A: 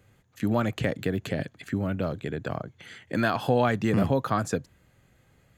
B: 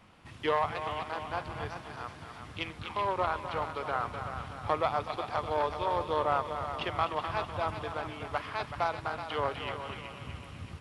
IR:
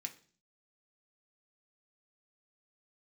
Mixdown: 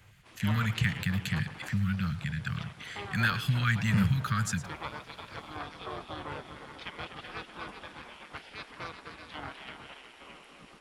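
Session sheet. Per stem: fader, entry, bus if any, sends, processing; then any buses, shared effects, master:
+2.5 dB, 0.00 s, no send, echo send −15 dB, inverse Chebyshev band-stop filter 330–780 Hz, stop band 50 dB
−2.0 dB, 0.00 s, no send, no echo send, gate on every frequency bin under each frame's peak −10 dB weak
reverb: not used
echo: single-tap delay 109 ms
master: no processing

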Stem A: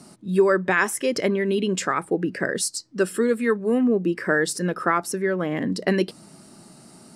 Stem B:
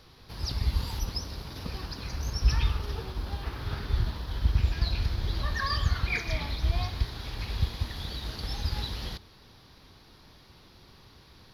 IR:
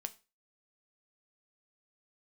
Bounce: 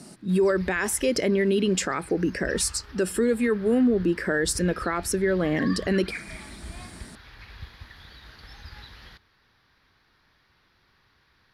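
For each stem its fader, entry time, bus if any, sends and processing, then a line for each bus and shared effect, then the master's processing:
+2.0 dB, 0.00 s, no send, parametric band 1,100 Hz −6 dB
−14.0 dB, 0.00 s, no send, parametric band 1,700 Hz +13.5 dB 1.3 octaves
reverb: not used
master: brickwall limiter −14.5 dBFS, peak gain reduction 8 dB

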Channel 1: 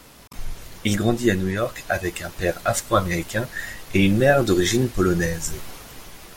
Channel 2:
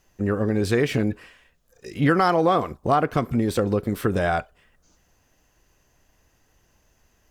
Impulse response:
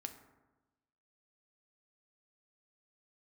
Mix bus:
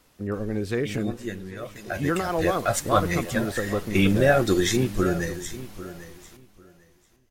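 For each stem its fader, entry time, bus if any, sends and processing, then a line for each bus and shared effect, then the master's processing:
0:01.53 −14 dB → 0:02.31 −2.5 dB → 0:04.97 −2.5 dB → 0:05.48 −9.5 dB, 0.00 s, no send, echo send −15 dB, no processing
−4.5 dB, 0.00 s, no send, echo send −18.5 dB, rotating-speaker cabinet horn 5 Hz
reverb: not used
echo: repeating echo 796 ms, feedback 19%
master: no processing

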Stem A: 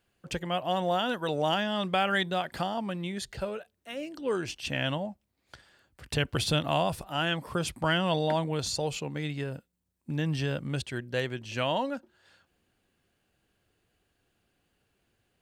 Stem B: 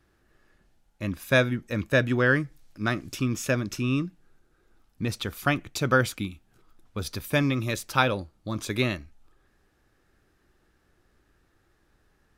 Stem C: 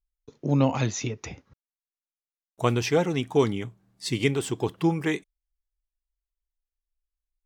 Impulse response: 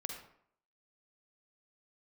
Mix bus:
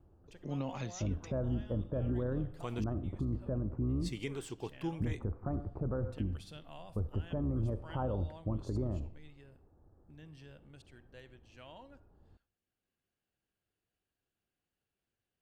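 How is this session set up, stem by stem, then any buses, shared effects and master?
−17.5 dB, 0.00 s, bus A, send −17 dB, automatic ducking −9 dB, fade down 0.25 s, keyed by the second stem
+0.5 dB, 0.00 s, bus A, send −18 dB, sub-octave generator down 2 octaves, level −5 dB; inverse Chebyshev low-pass filter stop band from 3,100 Hz, stop band 60 dB; parametric band 88 Hz +8 dB 0.77 octaves
−15.0 dB, 0.00 s, muted 0:02.84–0:03.71, no bus, send −20.5 dB, no processing
bus A: 0.0 dB, downward compressor, threshold −27 dBFS, peak gain reduction 11 dB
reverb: on, RT60 0.65 s, pre-delay 42 ms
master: brickwall limiter −26.5 dBFS, peak gain reduction 10.5 dB

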